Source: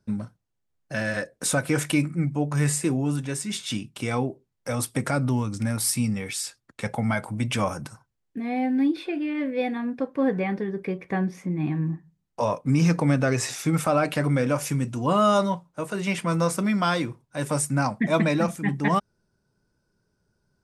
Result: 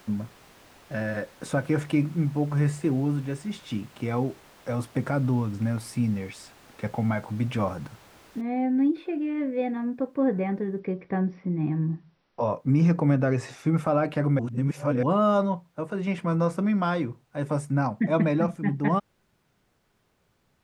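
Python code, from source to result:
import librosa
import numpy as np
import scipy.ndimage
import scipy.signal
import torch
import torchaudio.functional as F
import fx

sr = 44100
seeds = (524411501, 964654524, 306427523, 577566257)

y = fx.noise_floor_step(x, sr, seeds[0], at_s=8.41, before_db=-42, after_db=-61, tilt_db=0.0)
y = fx.brickwall_lowpass(y, sr, high_hz=5900.0, at=(10.79, 12.5))
y = fx.edit(y, sr, fx.reverse_span(start_s=14.39, length_s=0.64), tone=tone)
y = fx.lowpass(y, sr, hz=1000.0, slope=6)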